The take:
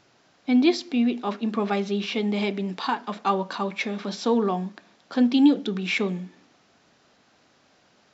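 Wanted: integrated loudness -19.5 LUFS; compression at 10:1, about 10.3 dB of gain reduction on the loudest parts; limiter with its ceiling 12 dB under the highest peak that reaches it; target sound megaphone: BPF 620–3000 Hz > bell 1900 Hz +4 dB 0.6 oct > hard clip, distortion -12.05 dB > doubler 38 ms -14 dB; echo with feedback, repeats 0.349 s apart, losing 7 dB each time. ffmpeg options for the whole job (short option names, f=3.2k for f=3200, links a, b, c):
-filter_complex "[0:a]acompressor=threshold=-22dB:ratio=10,alimiter=level_in=0.5dB:limit=-24dB:level=0:latency=1,volume=-0.5dB,highpass=620,lowpass=3k,equalizer=f=1.9k:t=o:w=0.6:g=4,aecho=1:1:349|698|1047|1396|1745:0.447|0.201|0.0905|0.0407|0.0183,asoftclip=type=hard:threshold=-33.5dB,asplit=2[a][b];[b]adelay=38,volume=-14dB[c];[a][c]amix=inputs=2:normalize=0,volume=20dB"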